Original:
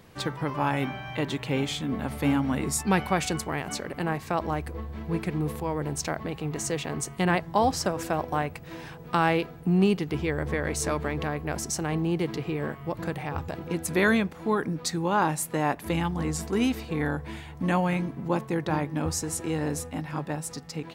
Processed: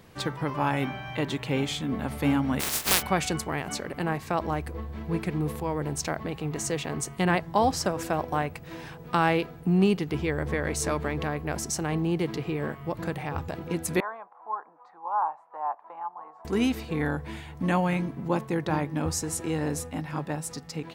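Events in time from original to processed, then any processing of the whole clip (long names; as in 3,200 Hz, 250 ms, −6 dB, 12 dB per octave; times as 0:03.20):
0:02.59–0:03.01: compressing power law on the bin magnitudes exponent 0.14
0:14.00–0:16.45: flat-topped band-pass 910 Hz, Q 2.2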